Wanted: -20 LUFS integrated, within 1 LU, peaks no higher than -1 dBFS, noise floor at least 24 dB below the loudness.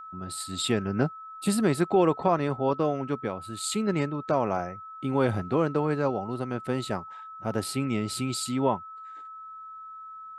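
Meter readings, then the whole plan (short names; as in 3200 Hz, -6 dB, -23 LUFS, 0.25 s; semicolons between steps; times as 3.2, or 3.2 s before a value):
steady tone 1300 Hz; tone level -40 dBFS; loudness -28.0 LUFS; peak -10.0 dBFS; loudness target -20.0 LUFS
-> notch 1300 Hz, Q 30; gain +8 dB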